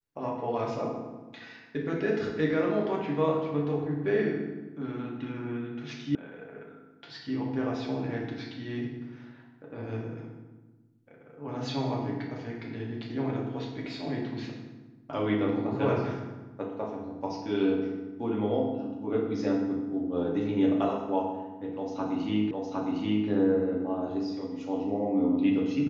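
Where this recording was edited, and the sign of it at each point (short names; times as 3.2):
6.15 sound cut off
22.51 repeat of the last 0.76 s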